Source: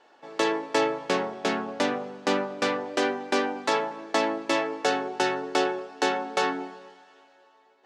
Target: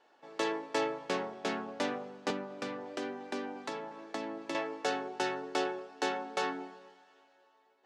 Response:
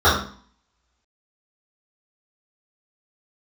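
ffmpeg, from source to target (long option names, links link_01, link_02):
-filter_complex "[0:a]asettb=1/sr,asplit=3[link_01][link_02][link_03];[link_01]atrim=end=2.304[link_04];[link_02]atrim=start=2.3:end=4.55,asetpts=PTS-STARTPTS,afade=type=in:duration=0.004:curve=qsin,afade=type=out:start_time=2.246:duration=0.004:curve=qsin,acrossover=split=320[link_05][link_06];[link_06]acompressor=threshold=-30dB:ratio=6[link_07];[link_05][link_07]amix=inputs=2:normalize=0[link_08];[link_03]atrim=start=4.546[link_09];[link_04][link_08]acrossfade=duration=0.004:curve1=hsin:curve2=qsin[link_10];[link_10][link_09]acrossfade=duration=0.004:curve1=qsin:curve2=hsin,volume=-8dB"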